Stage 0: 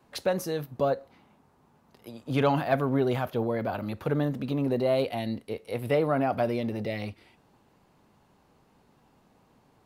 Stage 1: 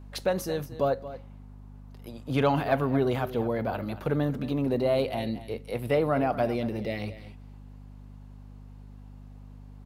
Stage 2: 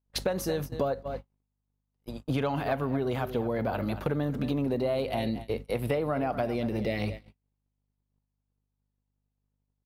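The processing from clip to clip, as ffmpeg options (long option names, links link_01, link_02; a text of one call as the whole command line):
ffmpeg -i in.wav -af "aeval=exprs='val(0)+0.00631*(sin(2*PI*50*n/s)+sin(2*PI*2*50*n/s)/2+sin(2*PI*3*50*n/s)/3+sin(2*PI*4*50*n/s)/4+sin(2*PI*5*50*n/s)/5)':channel_layout=same,aecho=1:1:228:0.188" out.wav
ffmpeg -i in.wav -af "acompressor=threshold=-30dB:ratio=10,agate=range=-42dB:threshold=-40dB:ratio=16:detection=peak,volume=5dB" out.wav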